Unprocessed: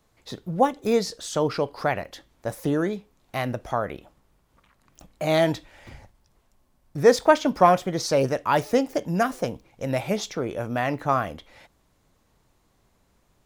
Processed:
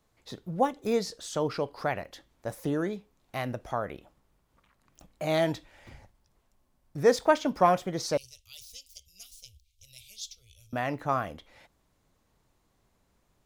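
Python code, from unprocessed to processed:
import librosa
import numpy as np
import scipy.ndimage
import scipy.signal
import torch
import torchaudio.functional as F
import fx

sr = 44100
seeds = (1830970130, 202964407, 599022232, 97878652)

y = fx.cheby2_bandstop(x, sr, low_hz=150.0, high_hz=1800.0, order=4, stop_db=40, at=(8.17, 10.73))
y = y * librosa.db_to_amplitude(-5.5)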